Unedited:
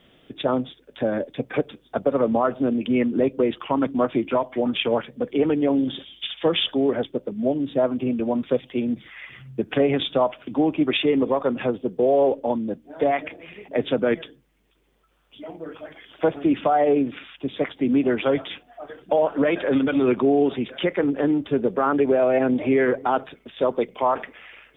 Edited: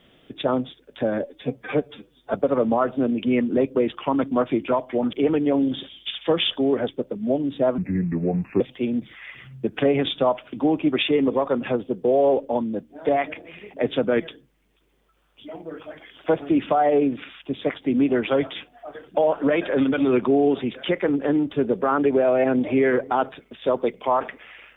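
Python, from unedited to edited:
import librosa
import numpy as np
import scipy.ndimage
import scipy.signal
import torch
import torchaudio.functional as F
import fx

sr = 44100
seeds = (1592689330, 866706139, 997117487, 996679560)

y = fx.edit(x, sr, fx.stretch_span(start_s=1.23, length_s=0.74, factor=1.5),
    fx.cut(start_s=4.76, length_s=0.53),
    fx.speed_span(start_s=7.94, length_s=0.61, speed=0.74), tone=tone)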